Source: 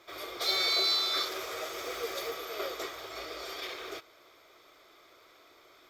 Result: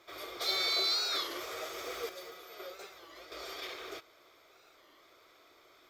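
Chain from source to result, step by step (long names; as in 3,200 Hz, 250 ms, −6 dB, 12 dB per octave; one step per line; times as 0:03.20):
0:02.09–0:03.32: tuned comb filter 180 Hz, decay 0.15 s, harmonics all, mix 80%
wow of a warped record 33 1/3 rpm, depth 160 cents
level −3 dB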